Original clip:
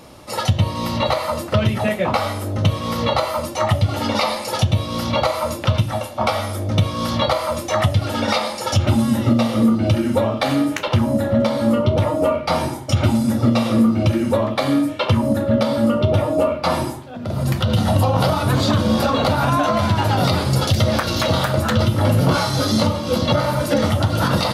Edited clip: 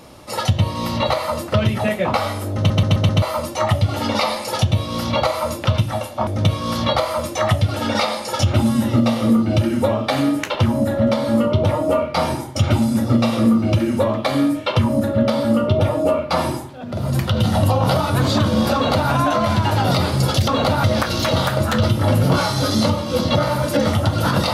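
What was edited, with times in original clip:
2.57 stutter in place 0.13 s, 5 plays
6.27–6.6 cut
19.08–19.44 copy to 20.81

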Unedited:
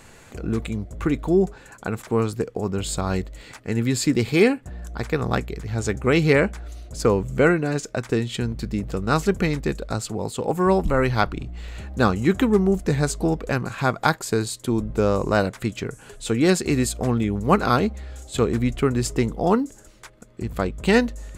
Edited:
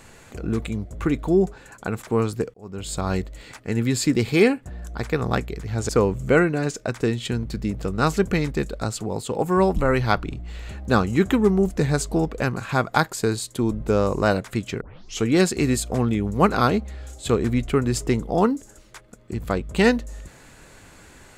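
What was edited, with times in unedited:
2.54–3.06 fade in
5.89–6.98 cut
15.9 tape start 0.42 s

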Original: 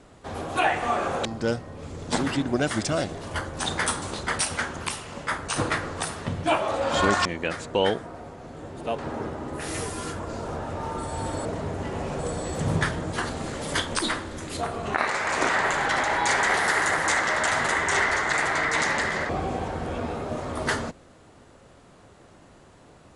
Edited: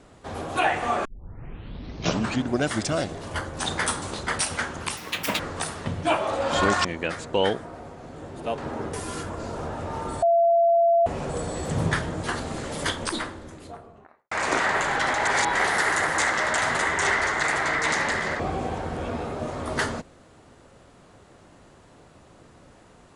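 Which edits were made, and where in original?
1.05 tape start 1.46 s
4.97–5.8 speed 196%
9.34–9.83 cut
11.12–11.96 bleep 679 Hz -15.5 dBFS
13.62–15.21 studio fade out
16.15–16.45 reverse

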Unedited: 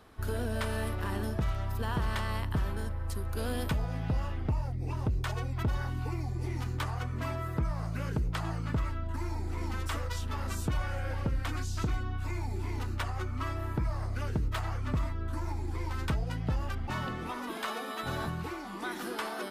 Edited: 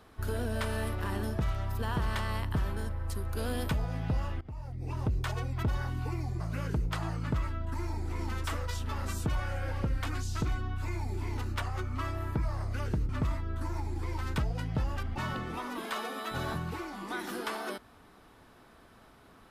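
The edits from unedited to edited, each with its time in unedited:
4.41–5.02 fade in, from -21 dB
6.4–7.82 cut
14.51–14.81 cut

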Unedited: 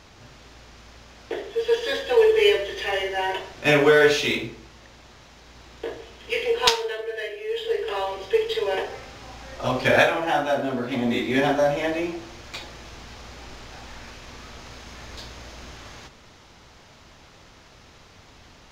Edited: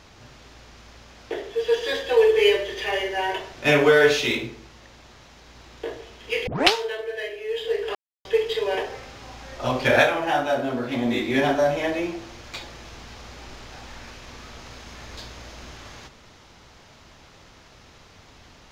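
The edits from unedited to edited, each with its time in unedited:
6.47 tape start 0.26 s
7.95–8.25 mute

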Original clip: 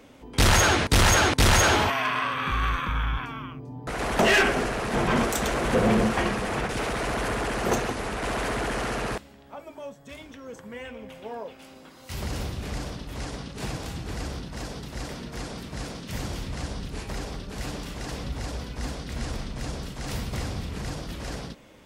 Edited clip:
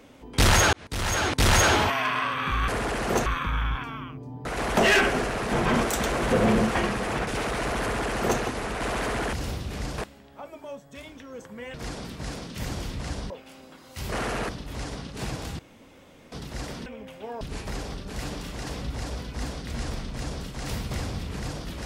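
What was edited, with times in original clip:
0.73–1.58 fade in
7.24–7.82 copy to 2.68
8.75–9.12 swap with 12.25–12.9
10.88–11.43 swap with 15.27–16.83
14–14.73 room tone

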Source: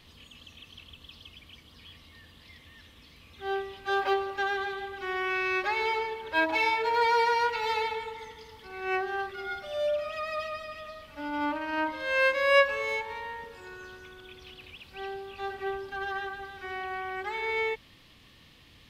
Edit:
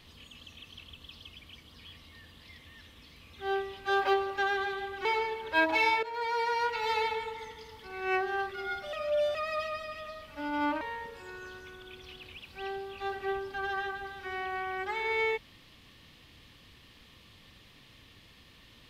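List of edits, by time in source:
5.05–5.85 cut
6.83–7.86 fade in, from -14 dB
9.73–10.15 reverse
11.61–13.19 cut

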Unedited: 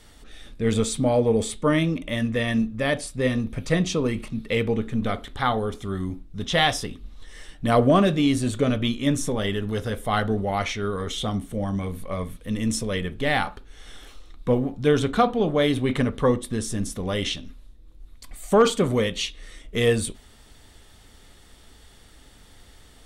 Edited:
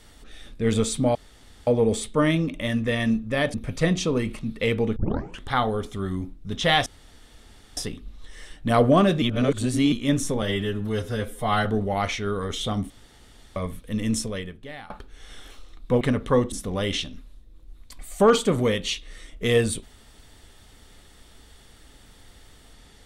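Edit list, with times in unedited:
1.15 insert room tone 0.52 s
3.02–3.43 cut
4.85 tape start 0.48 s
6.75 insert room tone 0.91 s
8.2–8.9 reverse
9.4–10.22 stretch 1.5×
11.47–12.13 room tone
12.74–13.47 fade out quadratic, to -19.5 dB
14.58–15.93 cut
16.44–16.84 cut

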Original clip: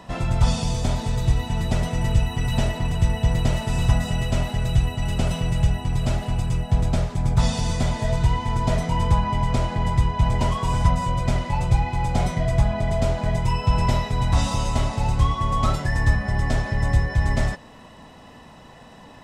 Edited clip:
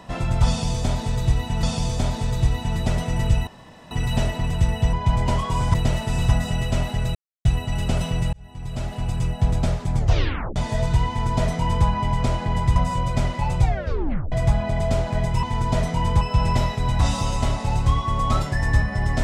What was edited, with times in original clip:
0.48–1.63 loop, 2 plays
2.32 insert room tone 0.44 s
4.75 insert silence 0.30 s
5.63–6.52 fade in
7.26 tape stop 0.60 s
8.38–9.16 copy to 13.54
10.06–10.87 move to 3.34
11.72 tape stop 0.71 s

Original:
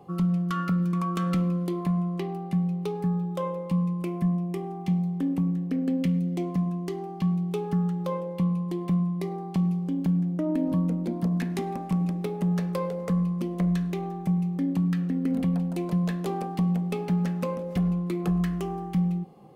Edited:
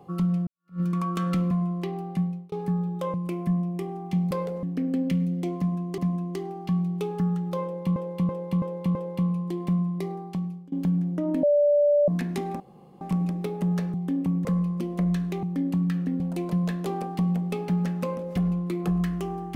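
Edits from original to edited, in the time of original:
0.47–0.8 fade in exponential
1.51–1.87 cut
2.55–2.88 fade out
3.5–3.89 cut
5.06–5.57 swap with 12.74–13.06
6.51–6.92 loop, 2 plays
8.16–8.49 loop, 5 plays
9.3–9.93 fade out, to -23.5 dB
10.64–11.29 bleep 584 Hz -16.5 dBFS
11.81 insert room tone 0.41 s
14.04–14.46 cut
15.23–15.6 cut

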